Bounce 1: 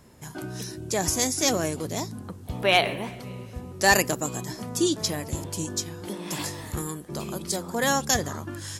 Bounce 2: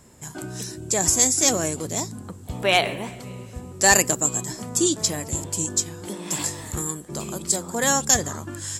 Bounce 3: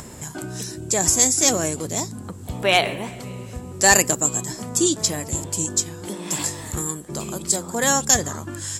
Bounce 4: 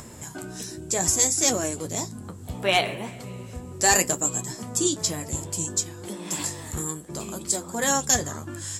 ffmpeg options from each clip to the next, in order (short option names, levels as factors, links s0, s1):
-af "equalizer=f=7600:t=o:w=0.3:g=13,volume=1.12"
-af "acompressor=mode=upward:threshold=0.0316:ratio=2.5,volume=1.19"
-af "flanger=delay=8.3:depth=5.1:regen=-48:speed=0.66:shape=triangular"